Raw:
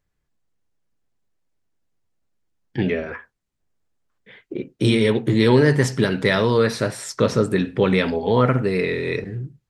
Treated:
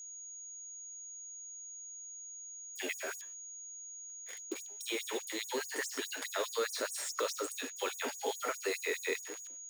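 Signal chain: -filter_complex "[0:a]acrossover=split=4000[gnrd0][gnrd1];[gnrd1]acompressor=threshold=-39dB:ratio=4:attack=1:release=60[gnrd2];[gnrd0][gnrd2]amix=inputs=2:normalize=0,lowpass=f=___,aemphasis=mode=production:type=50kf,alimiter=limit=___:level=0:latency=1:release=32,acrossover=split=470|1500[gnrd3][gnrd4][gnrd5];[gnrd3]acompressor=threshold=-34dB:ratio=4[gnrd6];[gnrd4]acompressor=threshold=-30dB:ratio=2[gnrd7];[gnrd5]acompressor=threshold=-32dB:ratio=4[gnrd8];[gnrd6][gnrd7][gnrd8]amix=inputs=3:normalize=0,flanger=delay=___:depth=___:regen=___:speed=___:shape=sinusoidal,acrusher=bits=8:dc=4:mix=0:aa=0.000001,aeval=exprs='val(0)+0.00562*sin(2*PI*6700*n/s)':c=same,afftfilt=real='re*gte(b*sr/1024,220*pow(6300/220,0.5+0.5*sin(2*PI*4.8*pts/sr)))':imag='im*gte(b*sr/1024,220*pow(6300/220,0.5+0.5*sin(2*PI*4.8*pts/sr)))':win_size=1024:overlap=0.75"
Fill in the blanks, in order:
10000, -12.5dB, 8.8, 4.1, 90, 0.6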